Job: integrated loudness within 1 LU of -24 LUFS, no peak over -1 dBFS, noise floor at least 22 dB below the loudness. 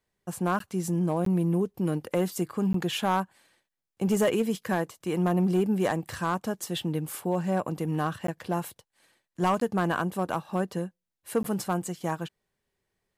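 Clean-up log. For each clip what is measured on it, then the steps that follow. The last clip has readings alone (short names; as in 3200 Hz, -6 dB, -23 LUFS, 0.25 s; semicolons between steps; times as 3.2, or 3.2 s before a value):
clipped 0.4%; flat tops at -17.5 dBFS; dropouts 6; longest dropout 13 ms; loudness -28.5 LUFS; peak -17.5 dBFS; loudness target -24.0 LUFS
-> clip repair -17.5 dBFS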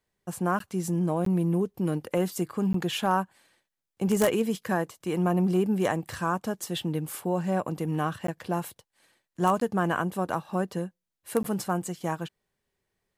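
clipped 0.0%; dropouts 6; longest dropout 13 ms
-> interpolate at 0.59/1.25/2.73/8.27/9.6/11.43, 13 ms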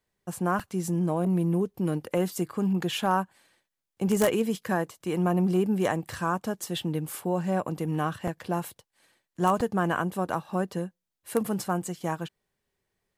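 dropouts 0; loudness -28.5 LUFS; peak -8.5 dBFS; loudness target -24.0 LUFS
-> gain +4.5 dB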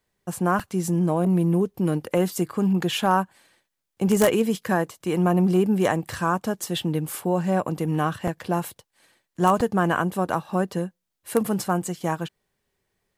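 loudness -24.0 LUFS; peak -4.0 dBFS; noise floor -80 dBFS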